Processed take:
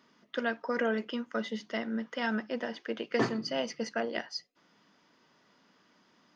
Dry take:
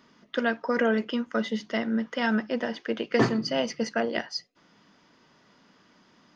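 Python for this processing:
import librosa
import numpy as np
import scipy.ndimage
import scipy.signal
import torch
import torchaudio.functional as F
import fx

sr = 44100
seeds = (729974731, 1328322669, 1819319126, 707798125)

y = fx.low_shelf(x, sr, hz=110.0, db=-11.0)
y = y * librosa.db_to_amplitude(-5.0)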